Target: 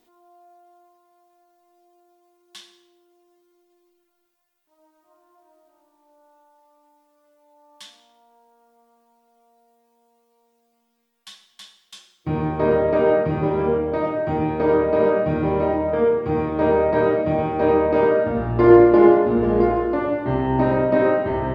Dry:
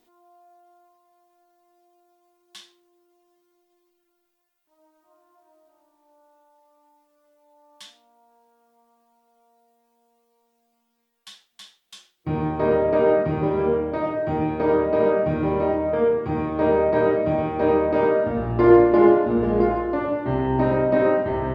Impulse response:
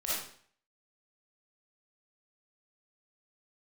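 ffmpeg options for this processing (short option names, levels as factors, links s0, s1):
-filter_complex "[0:a]asplit=2[s0][s1];[1:a]atrim=start_sample=2205,asetrate=26019,aresample=44100[s2];[s1][s2]afir=irnorm=-1:irlink=0,volume=0.0794[s3];[s0][s3]amix=inputs=2:normalize=0,volume=1.12"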